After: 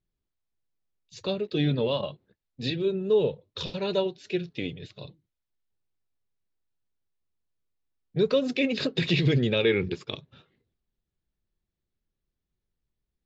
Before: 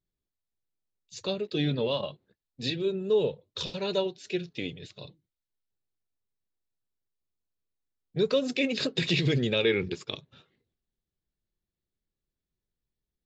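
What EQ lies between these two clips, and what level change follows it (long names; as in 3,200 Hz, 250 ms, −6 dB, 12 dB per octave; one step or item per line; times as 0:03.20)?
high-frequency loss of the air 100 metres
low-shelf EQ 140 Hz +3.5 dB
+2.0 dB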